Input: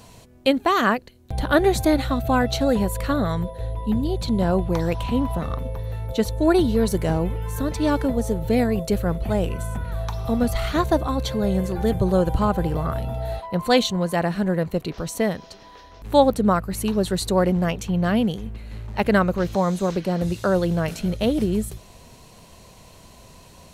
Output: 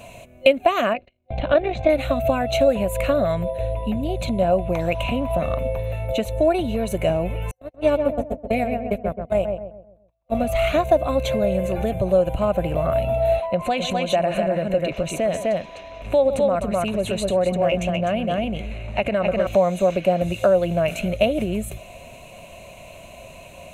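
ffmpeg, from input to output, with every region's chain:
-filter_complex "[0:a]asettb=1/sr,asplit=3[a][b][c];[a]atrim=end=0.934[d];[b]atrim=start=0.93:end=1.9,asetpts=PTS-STARTPTS,afade=t=in:d=0.004:c=qsin,afade=t=out:st=0.966:d=0.004:c=qsin,tremolo=f=51:d=0.519,lowpass=f=4.3k:w=0.5412,lowpass=f=4.3k:w=1.3066,agate=range=-19dB:threshold=-49dB:ratio=16:release=100:detection=peak[e];[c]atrim=start=1.896[f];[d][e]acrossfade=d=0.004:c1=hsin:c2=qsin[g];[g][f]acrossfade=d=0.004:c1=qsin:c2=hsin,asettb=1/sr,asplit=3[h][i][j];[h]atrim=end=7.514[k];[i]atrim=start=7.51:end=10.35,asetpts=PTS-STARTPTS,afade=t=in:d=0.004:c=qsin,afade=t=out:st=2.836:d=0.004:c=qsin,agate=range=-57dB:threshold=-20dB:ratio=16:release=100:detection=peak,asplit=2[l][m];[m]adelay=130,lowpass=f=1.2k:p=1,volume=-6dB,asplit=2[n][o];[o]adelay=130,lowpass=f=1.2k:p=1,volume=0.42,asplit=2[p][q];[q]adelay=130,lowpass=f=1.2k:p=1,volume=0.42,asplit=2[r][s];[s]adelay=130,lowpass=f=1.2k:p=1,volume=0.42,asplit=2[t][u];[u]adelay=130,lowpass=f=1.2k:p=1,volume=0.42[v];[l][n][p][r][t][v]amix=inputs=6:normalize=0,atrim=end_sample=125244[w];[j]atrim=start=10.346[x];[k][w]acrossfade=d=0.004:c1=hsin:c2=qsin[y];[y][x]acrossfade=d=0.004:c1=qsin:c2=hsin,asettb=1/sr,asplit=3[z][aa][ab];[z]atrim=end=13.504[ac];[aa]atrim=start=13.5:end=19.47,asetpts=PTS-STARTPTS,afade=t=in:d=0.004:c=qsin,afade=t=out:st=5.966:d=0.004:c=qsin,aecho=1:1:129|253:0.126|0.562,atrim=end_sample=263277,acompressor=threshold=-22dB:ratio=6:attack=3.2:release=140:knee=1:detection=peak,lowpass=9.1k[ad];[ab]atrim=start=19.466[ae];[ac][ad]acrossfade=d=0.004:c1=hsin:c2=qsin[af];[af][ae]acrossfade=d=0.004:c1=qsin:c2=hsin,acompressor=threshold=-22dB:ratio=6,superequalizer=8b=3.98:12b=3.55:14b=0.282,volume=1.5dB"

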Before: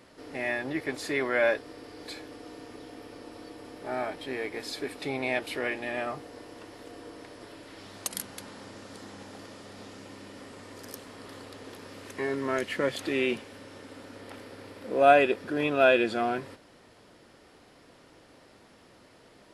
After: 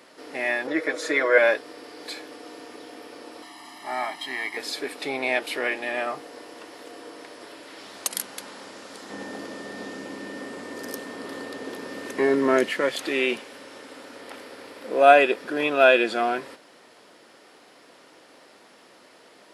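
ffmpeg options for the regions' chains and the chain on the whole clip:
-filter_complex "[0:a]asettb=1/sr,asplit=3[a][b][c];[a]atrim=end=0.674[d];[b]atrim=start=0.67:end=1.38,asetpts=PTS-STARTPTS,afade=t=in:d=0.004:c=qsin,afade=t=out:st=0.706:d=0.004:c=qsin,highpass=230,equalizer=f=540:t=q:w=4:g=10,equalizer=f=810:t=q:w=4:g=-6,equalizer=f=1.4k:t=q:w=4:g=4,equalizer=f=2.8k:t=q:w=4:g=-7,equalizer=f=4.7k:t=q:w=4:g=-7,equalizer=f=8.3k:t=q:w=4:g=-6,lowpass=f=9.7k:w=0.5412,lowpass=f=9.7k:w=1.3066,aecho=1:1:6.3:0.85,atrim=end_sample=31311[e];[c]atrim=start=1.376[f];[d][e]acrossfade=d=0.004:c1=hsin:c2=qsin[g];[g][f]acrossfade=d=0.004:c1=qsin:c2=hsin,asettb=1/sr,asplit=3[h][i][j];[h]atrim=end=3.424[k];[i]atrim=start=3.42:end=4.57,asetpts=PTS-STARTPTS,afade=t=in:d=0.004:c=qsin,afade=t=out:st=1.146:d=0.004:c=qsin,lowshelf=f=480:g=-9,aecho=1:1:1:0.99,atrim=end_sample=50715[l];[j]atrim=start=4.566[m];[k][l]acrossfade=d=0.004:c1=hsin:c2=qsin[n];[n][m]acrossfade=d=0.004:c1=qsin:c2=hsin,asettb=1/sr,asplit=3[o][p][q];[o]atrim=end=9.104[r];[p]atrim=start=9.1:end=12.7,asetpts=PTS-STARTPTS,afade=t=in:d=0.004:c=qsin,afade=t=out:st=3.596:d=0.004:c=qsin,aeval=exprs='val(0)+0.00316*sin(2*PI*1800*n/s)':c=same,equalizer=f=200:w=0.38:g=10.5[s];[q]atrim=start=12.696[t];[r][s]acrossfade=d=0.004:c1=hsin:c2=qsin[u];[u][t]acrossfade=d=0.004:c1=qsin:c2=hsin,highpass=190,lowshelf=f=270:g=-9.5,volume=6dB"

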